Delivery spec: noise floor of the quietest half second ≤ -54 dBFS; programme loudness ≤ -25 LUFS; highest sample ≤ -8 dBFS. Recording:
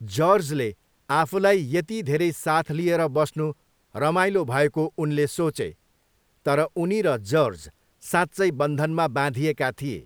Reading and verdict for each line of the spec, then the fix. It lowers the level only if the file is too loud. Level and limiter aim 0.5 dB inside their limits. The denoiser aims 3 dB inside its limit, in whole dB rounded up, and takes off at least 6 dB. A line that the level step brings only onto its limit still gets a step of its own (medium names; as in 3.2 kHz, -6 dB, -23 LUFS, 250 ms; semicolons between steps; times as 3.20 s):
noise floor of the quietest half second -66 dBFS: pass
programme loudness -23.5 LUFS: fail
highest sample -5.5 dBFS: fail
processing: trim -2 dB; peak limiter -8.5 dBFS